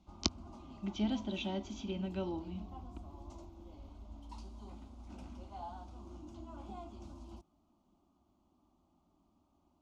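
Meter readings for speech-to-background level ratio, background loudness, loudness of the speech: 12.0 dB, −51.0 LKFS, −39.0 LKFS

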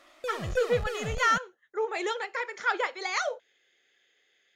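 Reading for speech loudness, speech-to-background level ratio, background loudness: −30.0 LKFS, 6.5 dB, −36.5 LKFS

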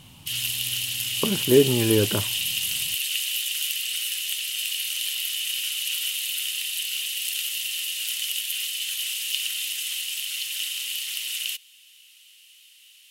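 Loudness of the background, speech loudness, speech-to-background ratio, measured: −25.5 LKFS, −22.5 LKFS, 3.0 dB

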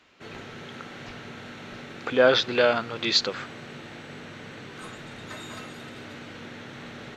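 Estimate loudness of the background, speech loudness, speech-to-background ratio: −41.0 LKFS, −22.5 LKFS, 18.5 dB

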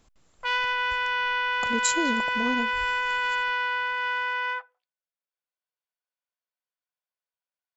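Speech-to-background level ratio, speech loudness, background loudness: −4.0 dB, −30.0 LKFS, −26.0 LKFS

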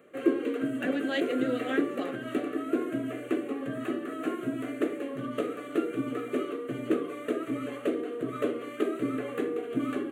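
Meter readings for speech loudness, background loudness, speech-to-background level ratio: −32.5 LKFS, −32.0 LKFS, −0.5 dB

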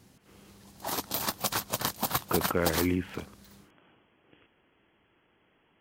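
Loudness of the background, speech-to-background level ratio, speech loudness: −31.5 LKFS, 0.5 dB, −31.0 LKFS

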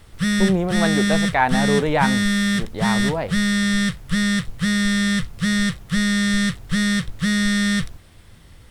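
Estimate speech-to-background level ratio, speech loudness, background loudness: −2.0 dB, −22.5 LKFS, −20.5 LKFS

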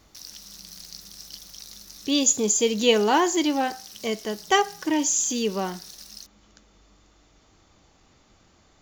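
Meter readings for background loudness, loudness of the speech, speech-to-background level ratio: −41.0 LKFS, −23.0 LKFS, 18.0 dB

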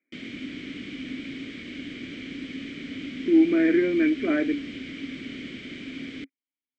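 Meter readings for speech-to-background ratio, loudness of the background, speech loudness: 14.5 dB, −36.5 LKFS, −22.0 LKFS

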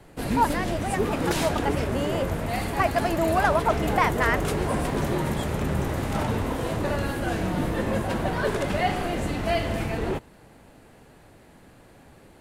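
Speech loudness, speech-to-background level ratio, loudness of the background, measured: −27.0 LKFS, 0.0 dB, −27.0 LKFS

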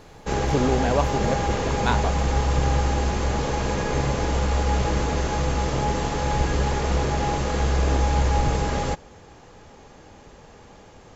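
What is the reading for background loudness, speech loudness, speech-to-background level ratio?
−24.0 LKFS, −27.0 LKFS, −3.0 dB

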